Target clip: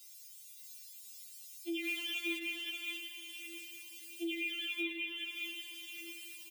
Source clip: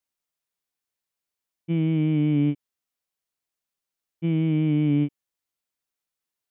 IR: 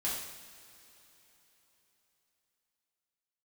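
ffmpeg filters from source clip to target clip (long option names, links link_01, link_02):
-filter_complex "[0:a]asplit=2[link_01][link_02];[1:a]atrim=start_sample=2205,adelay=85[link_03];[link_02][link_03]afir=irnorm=-1:irlink=0,volume=-10dB[link_04];[link_01][link_04]amix=inputs=2:normalize=0,acompressor=threshold=-40dB:ratio=2,tiltshelf=frequency=1300:gain=-7,asplit=2[link_05][link_06];[link_06]adelay=24,volume=-9dB[link_07];[link_05][link_07]amix=inputs=2:normalize=0,alimiter=level_in=13dB:limit=-24dB:level=0:latency=1:release=249,volume=-13dB,aexciter=amount=8.1:drive=1.7:freq=2100,asettb=1/sr,asplit=3[link_08][link_09][link_10];[link_08]atrim=end=1.844[link_11];[link_09]atrim=start=1.84:end=2.38,asetpts=PTS-STARTPTS,afade=type=in:duration=0.004:curve=qsin,afade=type=out:start_time=0.536:duration=0.004:curve=qsin,acrusher=bits=3:mode=log:mix=0:aa=0.000001[link_12];[link_10]atrim=start=2.376[link_13];[link_11][link_12]acrossfade=duration=0.004:curve1=hsin:curve2=qsin[link_14];[link_14][link_13]acrossfade=duration=0.004:curve1=qsin:curve2=hsin,asuperstop=centerf=870:order=4:qfactor=2.6,lowshelf=frequency=260:width_type=q:width=1.5:gain=-11.5,aecho=1:1:581:0.668,afftfilt=real='re*4*eq(mod(b,16),0)':imag='im*4*eq(mod(b,16),0)':win_size=2048:overlap=0.75,volume=8.5dB"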